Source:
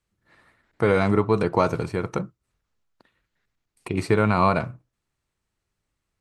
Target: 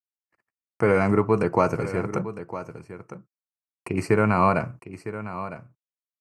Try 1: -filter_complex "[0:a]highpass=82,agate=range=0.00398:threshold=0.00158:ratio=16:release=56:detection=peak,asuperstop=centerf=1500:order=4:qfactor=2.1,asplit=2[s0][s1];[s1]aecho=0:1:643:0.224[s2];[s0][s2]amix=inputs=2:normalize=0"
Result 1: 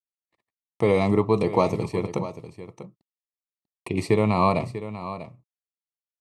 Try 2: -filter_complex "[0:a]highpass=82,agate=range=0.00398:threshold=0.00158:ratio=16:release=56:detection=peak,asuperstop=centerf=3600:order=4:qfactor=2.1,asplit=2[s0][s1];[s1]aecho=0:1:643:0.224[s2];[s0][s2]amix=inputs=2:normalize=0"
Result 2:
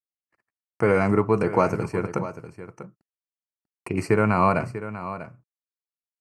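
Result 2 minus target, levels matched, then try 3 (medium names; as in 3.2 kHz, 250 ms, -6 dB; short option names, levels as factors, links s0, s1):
echo 314 ms early
-filter_complex "[0:a]highpass=82,agate=range=0.00398:threshold=0.00158:ratio=16:release=56:detection=peak,asuperstop=centerf=3600:order=4:qfactor=2.1,asplit=2[s0][s1];[s1]aecho=0:1:957:0.224[s2];[s0][s2]amix=inputs=2:normalize=0"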